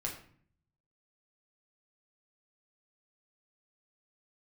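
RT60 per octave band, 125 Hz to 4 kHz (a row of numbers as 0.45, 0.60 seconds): 1.0, 0.80, 0.55, 0.50, 0.50, 0.40 seconds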